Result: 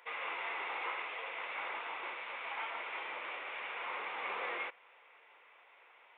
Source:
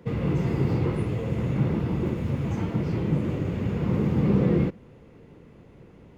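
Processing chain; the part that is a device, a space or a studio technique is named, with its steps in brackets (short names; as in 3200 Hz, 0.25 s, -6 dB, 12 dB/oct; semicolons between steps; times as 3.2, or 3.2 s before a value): musical greeting card (downsampling 8000 Hz; HPF 840 Hz 24 dB/oct; bell 2300 Hz +6 dB 0.3 oct); gain +2 dB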